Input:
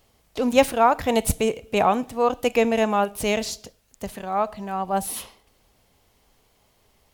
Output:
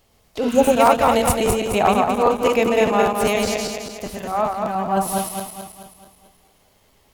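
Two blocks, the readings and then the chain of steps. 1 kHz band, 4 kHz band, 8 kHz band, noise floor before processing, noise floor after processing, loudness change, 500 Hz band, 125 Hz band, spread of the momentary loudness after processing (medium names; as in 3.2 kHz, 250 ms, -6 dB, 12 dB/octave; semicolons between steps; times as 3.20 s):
+4.5 dB, +3.5 dB, +4.5 dB, -64 dBFS, -59 dBFS, +4.0 dB, +4.5 dB, +4.5 dB, 16 LU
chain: backward echo that repeats 108 ms, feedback 69%, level -2 dB; spectral replace 0.45–0.73 s, 1–5.8 kHz both; crackling interface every 0.20 s, samples 512, repeat; trim +1 dB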